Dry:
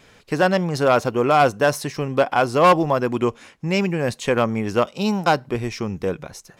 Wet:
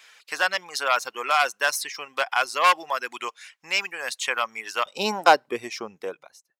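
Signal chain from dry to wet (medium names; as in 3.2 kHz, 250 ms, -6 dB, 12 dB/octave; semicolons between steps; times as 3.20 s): fade out at the end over 1.32 s; high-pass 1.4 kHz 12 dB/octave, from 4.86 s 480 Hz; reverb removal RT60 0.61 s; trim +3.5 dB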